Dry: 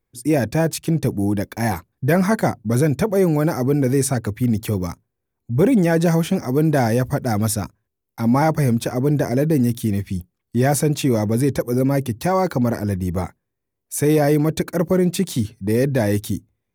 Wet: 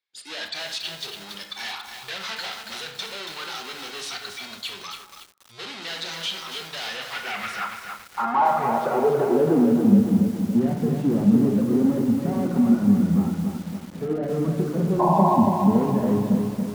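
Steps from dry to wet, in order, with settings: spectral noise reduction 13 dB; overdrive pedal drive 34 dB, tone 2600 Hz, clips at -6 dBFS; in parallel at -9.5 dB: sample-and-hold 38×; on the sum: band-pass sweep 3900 Hz -> 220 Hz, 6.82–9.92; painted sound noise, 14.99–15.36, 540–1100 Hz -17 dBFS; on a send at -4 dB: reverb RT60 0.75 s, pre-delay 17 ms; on the sum: lo-fi delay 0.281 s, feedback 55%, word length 6-bit, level -5 dB; gain -4.5 dB

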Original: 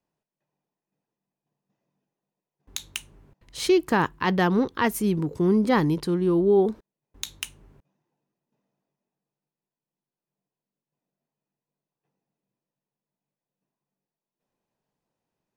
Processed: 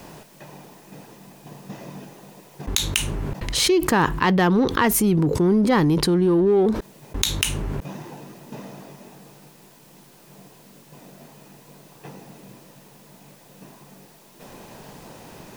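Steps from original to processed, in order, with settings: in parallel at -9 dB: hard clip -24.5 dBFS, distortion -7 dB; on the sum: fast leveller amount 70%; gain -1 dB

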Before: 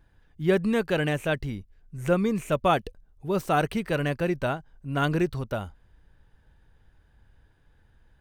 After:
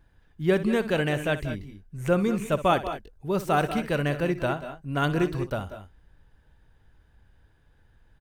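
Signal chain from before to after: tapped delay 62/185/188/208 ms -14.5/-17.5/-14/-15.5 dB

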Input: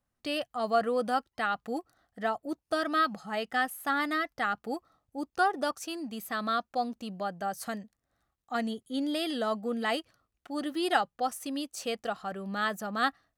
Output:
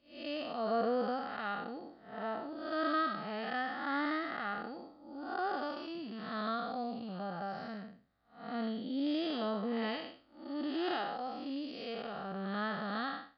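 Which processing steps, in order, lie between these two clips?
time blur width 0.239 s; downsampling 11025 Hz

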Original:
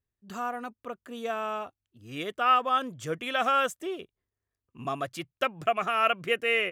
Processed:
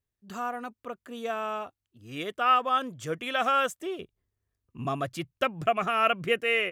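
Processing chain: 3.99–6.39 low shelf 240 Hz +9 dB

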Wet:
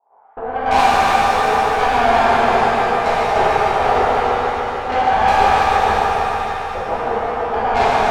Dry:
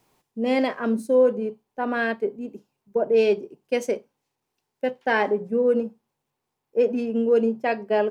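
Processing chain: per-bin compression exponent 0.6; steep low-pass 1200 Hz 48 dB/oct; gate -41 dBFS, range -42 dB; negative-ratio compressor -26 dBFS, ratio -0.5; resonant high-pass 800 Hz, resonance Q 7.5; tube stage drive 25 dB, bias 0.65; multi-head echo 0.149 s, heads first and second, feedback 66%, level -8 dB; shimmer reverb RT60 2.3 s, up +7 st, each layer -8 dB, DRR -9.5 dB; gain +5.5 dB

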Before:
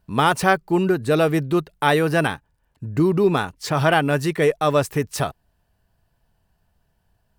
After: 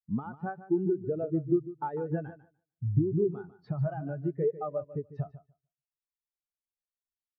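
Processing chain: LPF 3400 Hz 12 dB/oct; compressor 20:1, threshold -26 dBFS, peak gain reduction 16 dB; on a send: feedback echo 0.148 s, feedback 43%, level -6 dB; on the sum: spectral expander 2.5:1

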